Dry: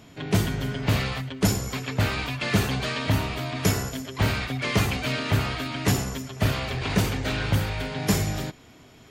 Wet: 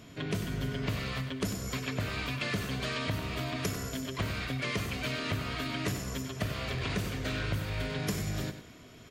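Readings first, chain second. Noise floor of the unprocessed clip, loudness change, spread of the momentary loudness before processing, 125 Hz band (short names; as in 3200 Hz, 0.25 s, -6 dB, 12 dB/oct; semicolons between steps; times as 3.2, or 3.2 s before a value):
-51 dBFS, -8.0 dB, 5 LU, -9.0 dB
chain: notch 830 Hz, Q 5; compressor 6:1, threshold -29 dBFS, peak gain reduction 12.5 dB; feedback echo 96 ms, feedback 32%, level -10.5 dB; gain -1.5 dB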